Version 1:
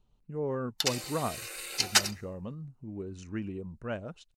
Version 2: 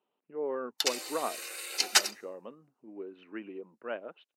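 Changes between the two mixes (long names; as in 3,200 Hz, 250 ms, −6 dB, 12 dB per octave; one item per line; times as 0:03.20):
speech: add Butterworth low-pass 3,200 Hz 36 dB per octave
master: add high-pass filter 310 Hz 24 dB per octave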